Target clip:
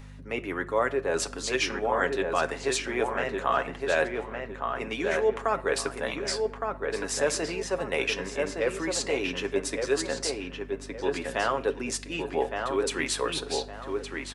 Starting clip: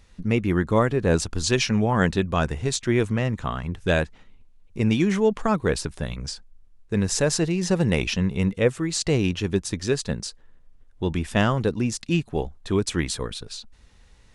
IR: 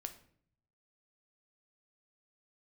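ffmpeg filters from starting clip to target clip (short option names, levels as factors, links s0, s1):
-filter_complex "[0:a]areverse,acompressor=threshold=0.0355:ratio=5,areverse,highpass=250,acrossover=split=350 2600:gain=0.158 1 0.224[s0][s1][s2];[s0][s1][s2]amix=inputs=3:normalize=0,asplit=2[s3][s4];[1:a]atrim=start_sample=2205[s5];[s4][s5]afir=irnorm=-1:irlink=0,volume=1.33[s6];[s3][s6]amix=inputs=2:normalize=0,aeval=exprs='val(0)+0.00501*(sin(2*PI*50*n/s)+sin(2*PI*2*50*n/s)/2+sin(2*PI*3*50*n/s)/3+sin(2*PI*4*50*n/s)/4+sin(2*PI*5*50*n/s)/5)':c=same,highshelf=f=5600:g=10.5,aecho=1:1:7.3:0.42,asplit=2[s7][s8];[s8]adelay=1164,lowpass=f=2600:p=1,volume=0.631,asplit=2[s9][s10];[s10]adelay=1164,lowpass=f=2600:p=1,volume=0.31,asplit=2[s11][s12];[s12]adelay=1164,lowpass=f=2600:p=1,volume=0.31,asplit=2[s13][s14];[s14]adelay=1164,lowpass=f=2600:p=1,volume=0.31[s15];[s7][s9][s11][s13][s15]amix=inputs=5:normalize=0,volume=1.41"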